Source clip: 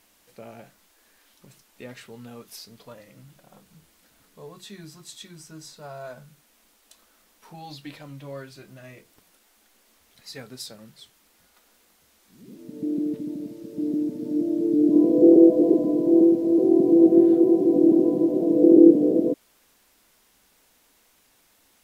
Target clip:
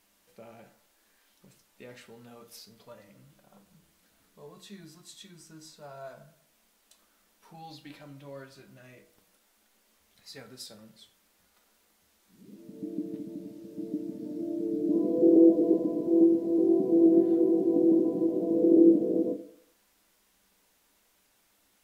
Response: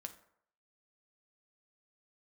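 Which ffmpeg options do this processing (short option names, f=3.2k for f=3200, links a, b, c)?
-filter_complex "[1:a]atrim=start_sample=2205[a];[0:a][a]afir=irnorm=-1:irlink=0,volume=-2dB"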